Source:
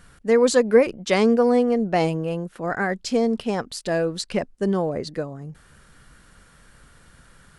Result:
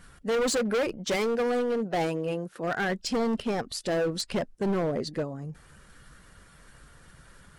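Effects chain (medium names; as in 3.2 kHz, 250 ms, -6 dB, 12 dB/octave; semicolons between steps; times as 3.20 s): coarse spectral quantiser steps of 15 dB; 1.15–2.88 s: high-pass 630 Hz -> 180 Hz 6 dB/octave; hard clipper -22.5 dBFS, distortion -6 dB; trim -1 dB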